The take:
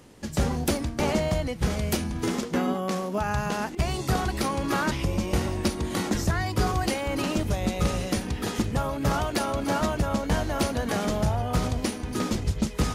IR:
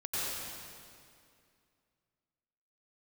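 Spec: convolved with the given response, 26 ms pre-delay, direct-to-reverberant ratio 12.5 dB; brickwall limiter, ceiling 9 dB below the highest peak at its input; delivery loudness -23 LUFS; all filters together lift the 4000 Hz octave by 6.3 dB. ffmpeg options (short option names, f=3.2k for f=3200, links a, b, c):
-filter_complex "[0:a]equalizer=f=4k:t=o:g=8,alimiter=limit=-19.5dB:level=0:latency=1,asplit=2[a][b];[1:a]atrim=start_sample=2205,adelay=26[c];[b][c]afir=irnorm=-1:irlink=0,volume=-18.5dB[d];[a][d]amix=inputs=2:normalize=0,volume=6dB"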